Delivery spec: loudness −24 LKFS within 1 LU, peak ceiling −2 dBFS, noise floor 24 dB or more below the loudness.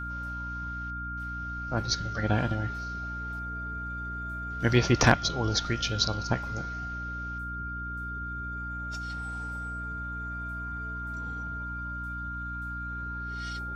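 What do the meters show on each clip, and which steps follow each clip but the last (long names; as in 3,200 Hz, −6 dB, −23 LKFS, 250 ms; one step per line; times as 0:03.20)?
mains hum 60 Hz; hum harmonics up to 300 Hz; level of the hum −36 dBFS; interfering tone 1,400 Hz; level of the tone −35 dBFS; integrated loudness −31.5 LKFS; sample peak −7.5 dBFS; target loudness −24.0 LKFS
→ hum removal 60 Hz, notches 5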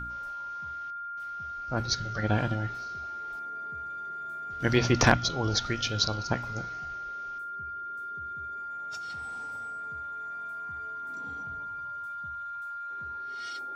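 mains hum none found; interfering tone 1,400 Hz; level of the tone −35 dBFS
→ notch filter 1,400 Hz, Q 30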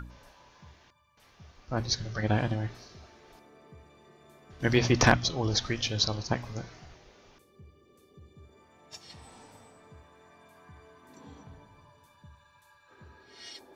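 interfering tone none found; integrated loudness −28.0 LKFS; sample peak −7.5 dBFS; target loudness −24.0 LKFS
→ level +4 dB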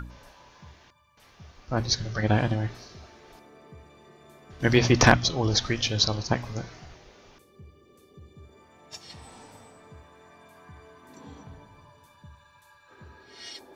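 integrated loudness −24.0 LKFS; sample peak −3.5 dBFS; background noise floor −58 dBFS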